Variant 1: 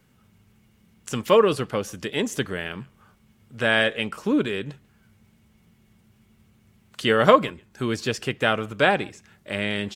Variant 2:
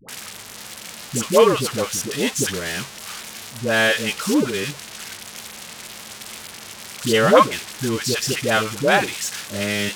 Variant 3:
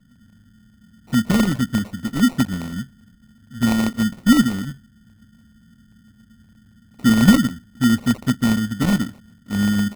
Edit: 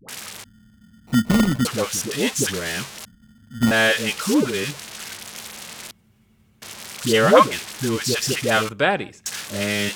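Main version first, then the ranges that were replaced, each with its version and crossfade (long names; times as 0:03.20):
2
0:00.44–0:01.65: punch in from 3
0:03.05–0:03.71: punch in from 3
0:05.91–0:06.62: punch in from 1
0:08.69–0:09.26: punch in from 1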